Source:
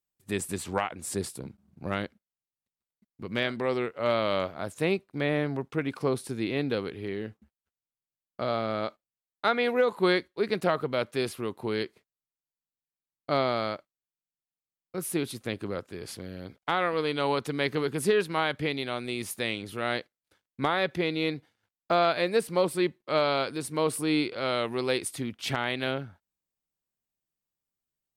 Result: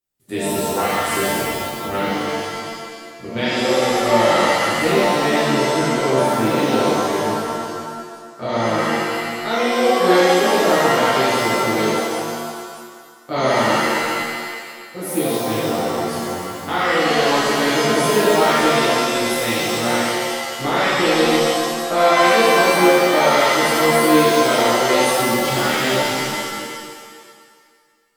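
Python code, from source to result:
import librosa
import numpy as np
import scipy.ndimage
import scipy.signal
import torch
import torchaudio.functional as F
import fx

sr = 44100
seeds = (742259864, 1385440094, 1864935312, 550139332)

y = fx.env_flanger(x, sr, rest_ms=4.9, full_db=-22.5, at=(8.77, 9.93), fade=0.02)
y = fx.rev_shimmer(y, sr, seeds[0], rt60_s=1.8, semitones=7, shimmer_db=-2, drr_db=-10.5)
y = F.gain(torch.from_numpy(y), -2.5).numpy()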